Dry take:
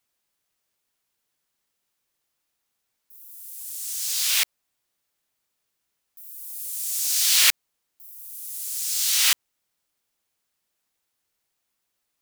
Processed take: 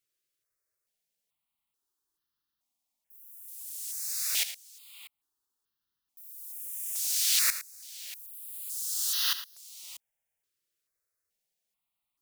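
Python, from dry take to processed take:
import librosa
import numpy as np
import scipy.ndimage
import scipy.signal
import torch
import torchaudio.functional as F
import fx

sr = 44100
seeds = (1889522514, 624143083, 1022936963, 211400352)

y = fx.echo_multitap(x, sr, ms=(73, 86, 111, 638), db=(-16.0, -16.0, -14.5, -19.0))
y = fx.phaser_held(y, sr, hz=2.3, low_hz=220.0, high_hz=2300.0)
y = y * 10.0 ** (-6.0 / 20.0)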